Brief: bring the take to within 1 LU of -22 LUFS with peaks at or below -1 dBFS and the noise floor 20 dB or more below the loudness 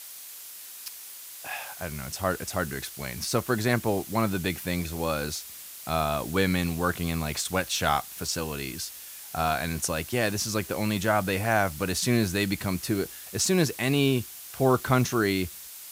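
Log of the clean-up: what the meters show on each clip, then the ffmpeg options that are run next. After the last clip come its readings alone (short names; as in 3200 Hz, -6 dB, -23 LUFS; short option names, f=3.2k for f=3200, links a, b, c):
noise floor -43 dBFS; noise floor target -48 dBFS; loudness -27.5 LUFS; peak -7.5 dBFS; loudness target -22.0 LUFS
-> -af "afftdn=nr=6:nf=-43"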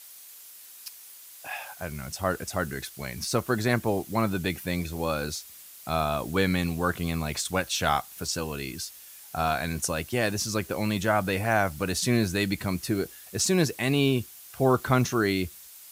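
noise floor -48 dBFS; loudness -27.5 LUFS; peak -7.5 dBFS; loudness target -22.0 LUFS
-> -af "volume=5.5dB"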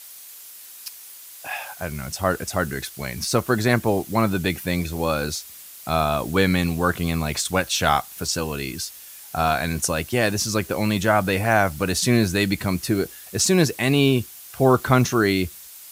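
loudness -22.0 LUFS; peak -2.0 dBFS; noise floor -42 dBFS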